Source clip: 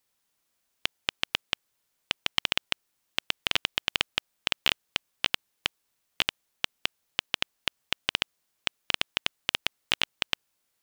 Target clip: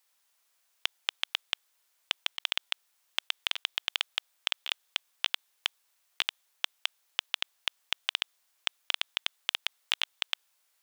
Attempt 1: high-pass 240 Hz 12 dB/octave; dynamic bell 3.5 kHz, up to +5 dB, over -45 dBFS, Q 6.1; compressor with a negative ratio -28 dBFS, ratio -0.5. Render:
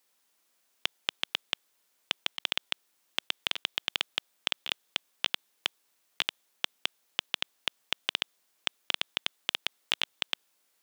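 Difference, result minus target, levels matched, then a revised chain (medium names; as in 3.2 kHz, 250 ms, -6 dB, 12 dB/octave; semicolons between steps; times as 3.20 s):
250 Hz band +12.5 dB
high-pass 680 Hz 12 dB/octave; dynamic bell 3.5 kHz, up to +5 dB, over -45 dBFS, Q 6.1; compressor with a negative ratio -28 dBFS, ratio -0.5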